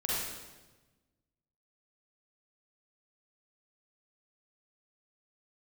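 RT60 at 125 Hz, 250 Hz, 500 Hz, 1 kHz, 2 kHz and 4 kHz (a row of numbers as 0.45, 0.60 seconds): 1.7, 1.6, 1.3, 1.1, 1.1, 1.0 seconds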